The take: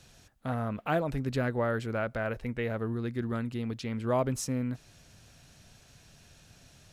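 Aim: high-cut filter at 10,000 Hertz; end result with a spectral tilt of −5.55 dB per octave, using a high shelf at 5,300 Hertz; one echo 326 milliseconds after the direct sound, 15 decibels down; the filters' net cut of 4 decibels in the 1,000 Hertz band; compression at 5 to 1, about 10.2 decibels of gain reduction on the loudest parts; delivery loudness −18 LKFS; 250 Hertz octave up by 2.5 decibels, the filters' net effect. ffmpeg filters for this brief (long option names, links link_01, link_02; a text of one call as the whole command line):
ffmpeg -i in.wav -af "lowpass=10000,equalizer=frequency=250:width_type=o:gain=3,equalizer=frequency=1000:width_type=o:gain=-6.5,highshelf=frequency=5300:gain=8,acompressor=threshold=-36dB:ratio=5,aecho=1:1:326:0.178,volume=22dB" out.wav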